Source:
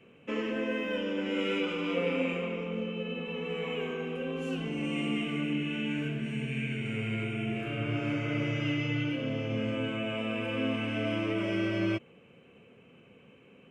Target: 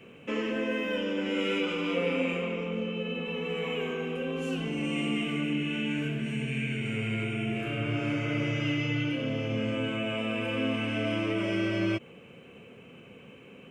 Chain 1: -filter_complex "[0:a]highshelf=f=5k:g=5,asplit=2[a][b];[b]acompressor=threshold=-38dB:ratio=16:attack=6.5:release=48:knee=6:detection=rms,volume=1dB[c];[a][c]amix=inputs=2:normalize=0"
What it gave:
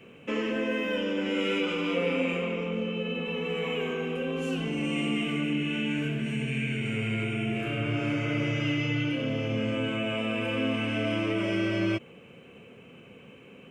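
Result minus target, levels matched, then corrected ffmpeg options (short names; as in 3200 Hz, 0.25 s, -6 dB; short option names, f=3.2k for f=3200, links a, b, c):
compressor: peak gain reduction -6 dB
-filter_complex "[0:a]highshelf=f=5k:g=5,asplit=2[a][b];[b]acompressor=threshold=-44.5dB:ratio=16:attack=6.5:release=48:knee=6:detection=rms,volume=1dB[c];[a][c]amix=inputs=2:normalize=0"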